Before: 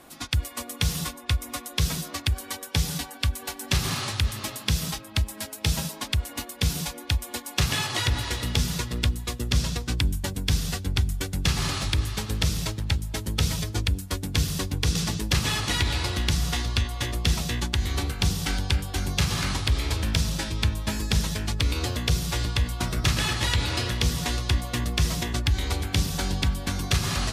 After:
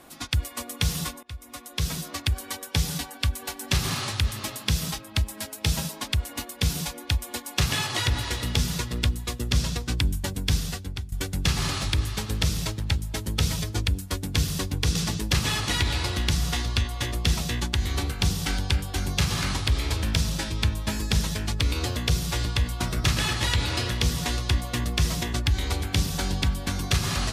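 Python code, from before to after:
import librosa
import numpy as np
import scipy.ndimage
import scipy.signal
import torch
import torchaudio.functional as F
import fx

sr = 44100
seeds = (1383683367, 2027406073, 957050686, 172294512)

y = fx.edit(x, sr, fx.fade_in_from(start_s=1.23, length_s=1.22, curve='qsin', floor_db=-21.5),
    fx.fade_out_to(start_s=10.55, length_s=0.57, floor_db=-17.0), tone=tone)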